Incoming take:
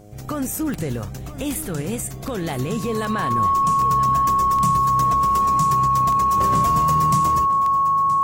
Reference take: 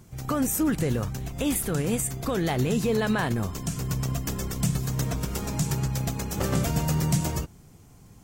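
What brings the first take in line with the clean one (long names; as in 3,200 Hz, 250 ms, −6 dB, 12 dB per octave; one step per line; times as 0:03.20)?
click removal
hum removal 104.1 Hz, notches 7
notch filter 1,100 Hz, Q 30
echo removal 973 ms −15 dB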